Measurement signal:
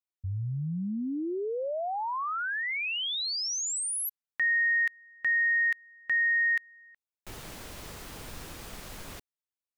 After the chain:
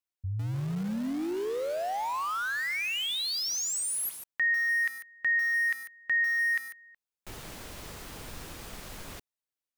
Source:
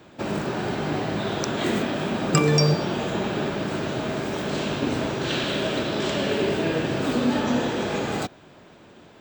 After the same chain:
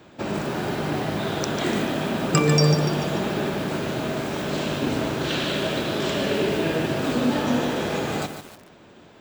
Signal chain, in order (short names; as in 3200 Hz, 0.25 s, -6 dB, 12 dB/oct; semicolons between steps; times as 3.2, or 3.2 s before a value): lo-fi delay 0.146 s, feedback 55%, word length 6-bit, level -8 dB